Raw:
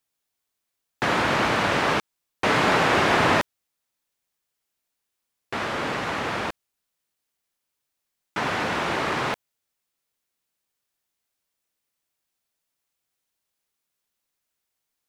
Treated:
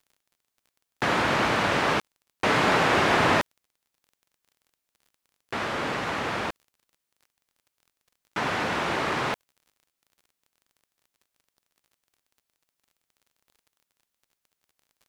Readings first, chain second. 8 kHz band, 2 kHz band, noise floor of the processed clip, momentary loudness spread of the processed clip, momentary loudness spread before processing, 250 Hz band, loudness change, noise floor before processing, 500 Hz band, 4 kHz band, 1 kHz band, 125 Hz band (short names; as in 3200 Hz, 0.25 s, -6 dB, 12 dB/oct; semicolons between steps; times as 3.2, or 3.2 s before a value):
-1.5 dB, -1.5 dB, -83 dBFS, 11 LU, 11 LU, -1.5 dB, -1.5 dB, -82 dBFS, -1.5 dB, -1.5 dB, -1.5 dB, -1.5 dB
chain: crackle 30/s -46 dBFS; gain -1.5 dB